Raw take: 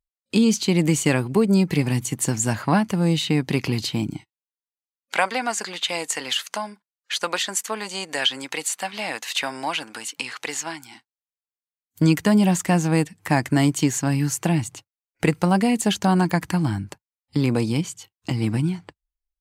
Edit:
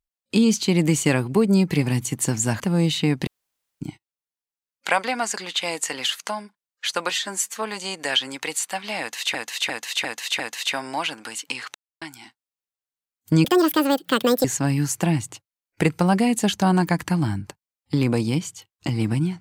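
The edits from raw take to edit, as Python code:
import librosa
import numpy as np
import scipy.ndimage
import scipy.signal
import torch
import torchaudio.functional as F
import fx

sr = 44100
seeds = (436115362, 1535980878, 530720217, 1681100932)

y = fx.edit(x, sr, fx.cut(start_s=2.6, length_s=0.27),
    fx.room_tone_fill(start_s=3.54, length_s=0.54),
    fx.stretch_span(start_s=7.37, length_s=0.35, factor=1.5),
    fx.repeat(start_s=9.09, length_s=0.35, count=5),
    fx.silence(start_s=10.44, length_s=0.27),
    fx.speed_span(start_s=12.14, length_s=1.73, speed=1.73), tone=tone)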